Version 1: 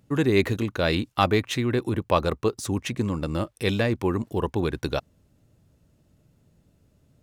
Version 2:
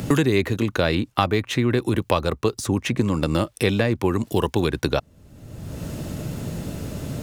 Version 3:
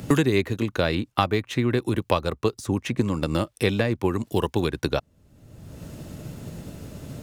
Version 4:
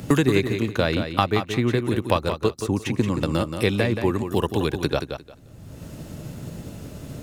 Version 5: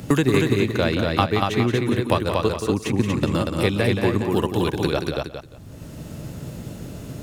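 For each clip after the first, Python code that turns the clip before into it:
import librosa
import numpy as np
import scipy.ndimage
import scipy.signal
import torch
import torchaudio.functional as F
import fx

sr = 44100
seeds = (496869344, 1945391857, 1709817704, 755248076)

y1 = fx.band_squash(x, sr, depth_pct=100)
y1 = F.gain(torch.from_numpy(y1), 3.0).numpy()
y2 = fx.upward_expand(y1, sr, threshold_db=-31.0, expansion=1.5)
y3 = fx.echo_feedback(y2, sr, ms=176, feedback_pct=20, wet_db=-8.0)
y3 = F.gain(torch.from_numpy(y3), 1.0).numpy()
y4 = y3 + 10.0 ** (-3.0 / 20.0) * np.pad(y3, (int(237 * sr / 1000.0), 0))[:len(y3)]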